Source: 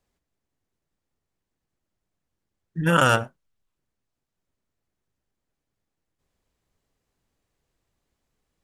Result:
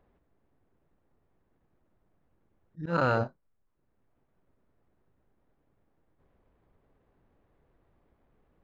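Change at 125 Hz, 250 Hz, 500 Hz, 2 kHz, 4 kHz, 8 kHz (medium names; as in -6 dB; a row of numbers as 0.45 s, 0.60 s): -7.5 dB, -8.0 dB, -5.0 dB, -11.0 dB, -17.5 dB, under -25 dB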